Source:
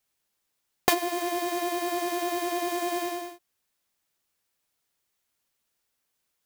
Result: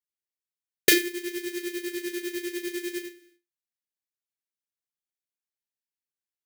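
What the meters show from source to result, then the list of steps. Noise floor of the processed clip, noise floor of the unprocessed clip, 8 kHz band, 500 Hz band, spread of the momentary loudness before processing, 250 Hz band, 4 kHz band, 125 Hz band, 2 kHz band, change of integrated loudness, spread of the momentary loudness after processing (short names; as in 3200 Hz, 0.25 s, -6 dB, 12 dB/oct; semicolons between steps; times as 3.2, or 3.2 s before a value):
under -85 dBFS, -79 dBFS, +3.5 dB, -2.0 dB, 6 LU, +0.5 dB, +3.5 dB, n/a, +4.5 dB, +1.0 dB, 13 LU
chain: elliptic band-stop 440–1600 Hz, stop band 60 dB; gate -30 dBFS, range -27 dB; low shelf 77 Hz -7.5 dB; on a send: flutter echo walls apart 5.9 m, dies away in 0.21 s; on the sum: gain +7 dB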